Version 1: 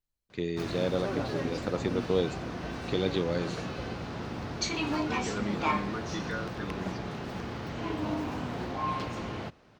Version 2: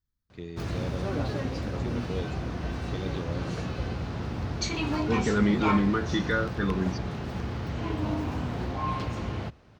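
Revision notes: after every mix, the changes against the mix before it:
first voice −9.5 dB
second voice +9.0 dB
master: add parametric band 68 Hz +11.5 dB 1.9 octaves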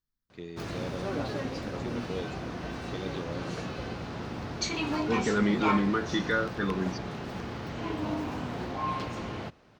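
master: add parametric band 68 Hz −11.5 dB 1.9 octaves

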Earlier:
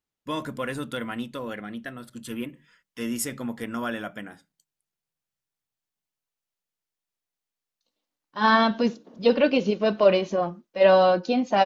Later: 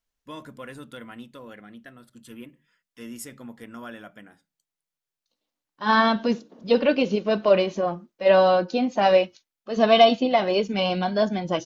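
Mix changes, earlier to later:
first voice −9.0 dB
second voice: entry −2.55 s

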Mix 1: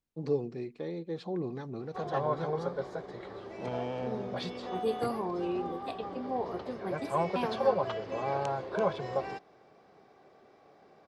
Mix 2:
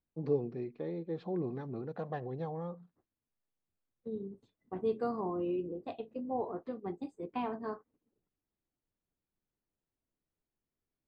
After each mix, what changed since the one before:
background: muted
master: add head-to-tape spacing loss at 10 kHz 27 dB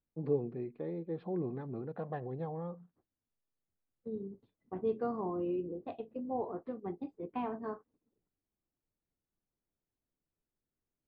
master: add high-frequency loss of the air 310 metres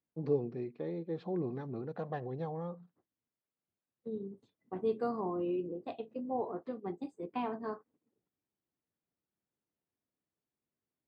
second voice: add high-pass filter 110 Hz 12 dB per octave
master: remove high-frequency loss of the air 310 metres

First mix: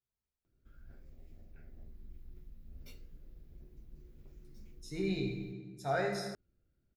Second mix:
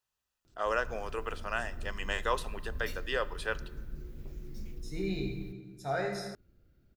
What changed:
first voice: unmuted
background +11.5 dB

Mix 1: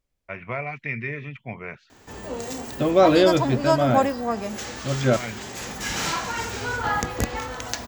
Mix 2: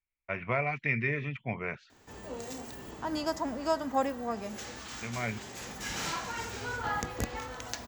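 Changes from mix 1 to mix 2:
second voice: muted
background −8.5 dB

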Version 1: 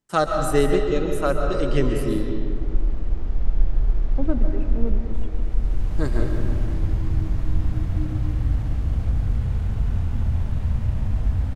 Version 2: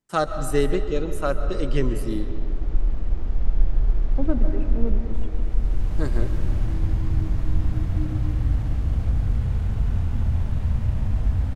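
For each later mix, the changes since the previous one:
first voice: send −8.5 dB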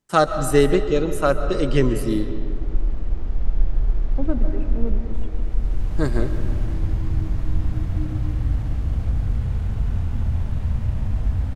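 first voice +6.0 dB

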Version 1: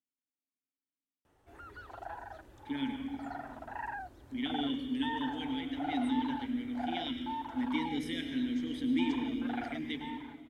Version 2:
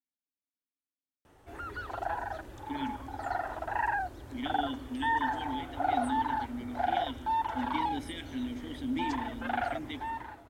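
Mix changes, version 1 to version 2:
speech: send −10.5 dB
background +9.5 dB

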